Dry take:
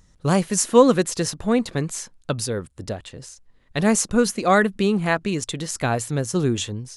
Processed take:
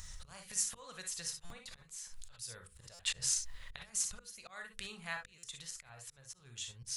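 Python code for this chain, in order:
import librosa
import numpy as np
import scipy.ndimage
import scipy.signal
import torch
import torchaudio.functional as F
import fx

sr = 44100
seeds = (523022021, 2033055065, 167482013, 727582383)

y = fx.over_compress(x, sr, threshold_db=-21.0, ratio=-0.5, at=(2.32, 4.18), fade=0.02)
y = fx.high_shelf(y, sr, hz=fx.line((5.69, 3600.0), (6.45, 5900.0)), db=-8.5, at=(5.69, 6.45), fade=0.02)
y = fx.gate_flip(y, sr, shuts_db=-21.0, range_db=-25)
y = fx.rev_gated(y, sr, seeds[0], gate_ms=80, shape='rising', drr_db=6.5)
y = fx.auto_swell(y, sr, attack_ms=364.0)
y = fx.tone_stack(y, sr, knobs='10-0-10')
y = fx.hum_notches(y, sr, base_hz=50, count=10)
y = fx.buffer_glitch(y, sr, at_s=(1.45, 2.94, 5.38), block=256, repeats=8)
y = y * librosa.db_to_amplitude(13.5)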